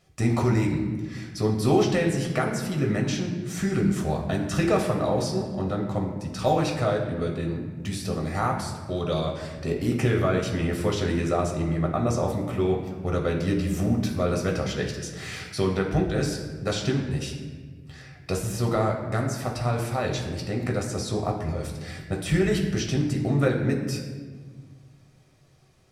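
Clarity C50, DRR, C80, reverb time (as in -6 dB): 5.5 dB, 0.0 dB, 7.5 dB, 1.5 s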